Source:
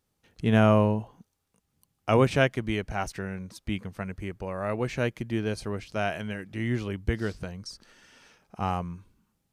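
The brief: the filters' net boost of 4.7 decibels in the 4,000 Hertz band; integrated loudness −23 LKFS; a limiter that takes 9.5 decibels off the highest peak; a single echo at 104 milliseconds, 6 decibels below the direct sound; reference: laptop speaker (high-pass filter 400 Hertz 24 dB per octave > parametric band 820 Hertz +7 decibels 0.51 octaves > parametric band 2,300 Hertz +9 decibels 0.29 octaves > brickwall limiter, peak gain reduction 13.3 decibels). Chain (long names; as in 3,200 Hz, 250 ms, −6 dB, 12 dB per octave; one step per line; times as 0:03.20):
parametric band 4,000 Hz +5.5 dB
brickwall limiter −17.5 dBFS
high-pass filter 400 Hz 24 dB per octave
parametric band 820 Hz +7 dB 0.51 octaves
parametric band 2,300 Hz +9 dB 0.29 octaves
single-tap delay 104 ms −6 dB
level +15 dB
brickwall limiter −12 dBFS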